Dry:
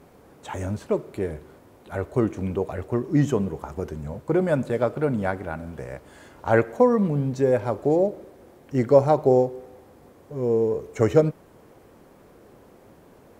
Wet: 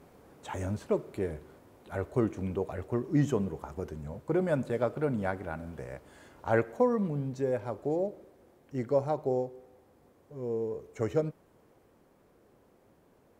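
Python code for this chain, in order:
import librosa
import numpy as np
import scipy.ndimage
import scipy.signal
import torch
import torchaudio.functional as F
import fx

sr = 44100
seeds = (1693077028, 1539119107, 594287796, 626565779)

y = fx.rider(x, sr, range_db=4, speed_s=2.0)
y = F.gain(torch.from_numpy(y), -8.5).numpy()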